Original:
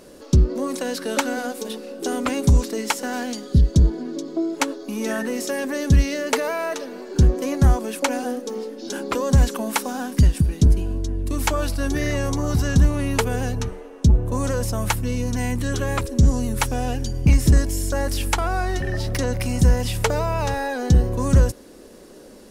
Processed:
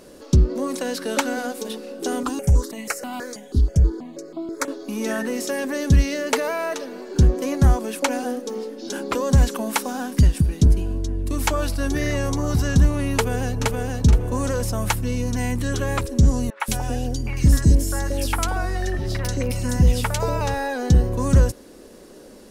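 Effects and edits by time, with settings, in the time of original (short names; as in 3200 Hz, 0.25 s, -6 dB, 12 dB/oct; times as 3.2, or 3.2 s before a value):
2.23–4.68 step phaser 6.2 Hz 580–1700 Hz
13.14–13.79 echo throw 0.47 s, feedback 25%, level -2.5 dB
16.5–20.41 three bands offset in time mids, highs, lows 0.1/0.18 s, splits 660/2700 Hz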